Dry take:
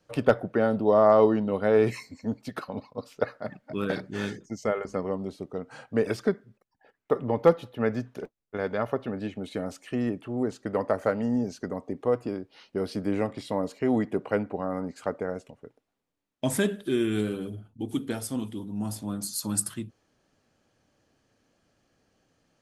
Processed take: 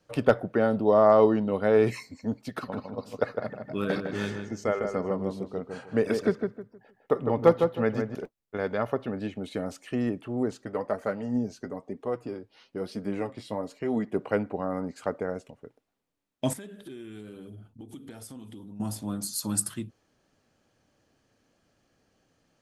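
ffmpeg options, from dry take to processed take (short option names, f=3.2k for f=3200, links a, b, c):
-filter_complex "[0:a]asettb=1/sr,asplit=3[a][b][c];[a]atrim=end=2.434[d];[b]atrim=start=2.43:end=8.15,asetpts=PTS-STARTPTS,afade=t=in:d=0.004:c=qsin,afade=t=out:st=5.716:d=0.004:c=qsin,asplit=2[e][f];[f]adelay=156,lowpass=f=1.8k:p=1,volume=-5dB,asplit=2[g][h];[h]adelay=156,lowpass=f=1.8k:p=1,volume=0.28,asplit=2[i][j];[j]adelay=156,lowpass=f=1.8k:p=1,volume=0.28,asplit=2[k][l];[l]adelay=156,lowpass=f=1.8k:p=1,volume=0.28[m];[e][g][i][k][m]amix=inputs=5:normalize=0,atrim=end_sample=252252[n];[c]atrim=start=8.146[o];[d][n]acrossfade=d=0.004:c1=hsin:c2=qsin[p];[p][o]acrossfade=d=0.004:c1=qsin:c2=hsin,asplit=3[q][r][s];[q]afade=t=out:st=10.64:d=0.02[t];[r]flanger=delay=4.1:depth=5.5:regen=45:speed=1:shape=triangular,afade=t=in:st=10.64:d=0.02,afade=t=out:st=14.13:d=0.02[u];[s]afade=t=in:st=14.13:d=0.02[v];[t][u][v]amix=inputs=3:normalize=0,asettb=1/sr,asplit=3[w][x][y];[w]atrim=end=16.534[z];[x]atrim=start=16.53:end=18.8,asetpts=PTS-STARTPTS,afade=t=in:d=0.004:c=qsin,afade=t=out:st=2.266:d=0.004:c=qsin,acompressor=threshold=-41dB:ratio=5:attack=3.2:release=140:knee=1:detection=peak[aa];[y]atrim=start=18.796[ab];[z][aa]acrossfade=d=0.004:c1=hsin:c2=qsin[ac];[ac][ab]acrossfade=d=0.004:c1=qsin:c2=hsin"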